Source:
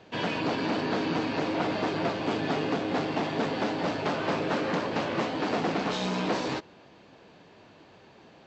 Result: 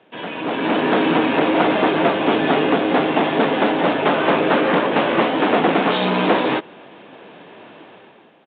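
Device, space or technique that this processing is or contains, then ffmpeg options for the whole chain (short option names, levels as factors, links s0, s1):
Bluetooth headset: -af "highpass=210,dynaudnorm=f=170:g=7:m=4.73,aresample=8000,aresample=44100" -ar 16000 -c:a sbc -b:a 64k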